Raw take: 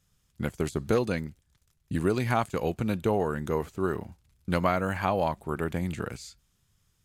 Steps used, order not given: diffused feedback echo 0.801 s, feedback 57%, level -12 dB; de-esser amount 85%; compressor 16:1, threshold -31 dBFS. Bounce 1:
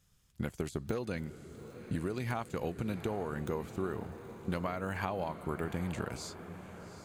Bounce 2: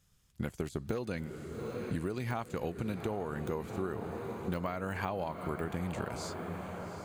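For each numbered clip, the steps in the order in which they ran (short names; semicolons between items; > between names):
compressor > de-esser > diffused feedback echo; de-esser > diffused feedback echo > compressor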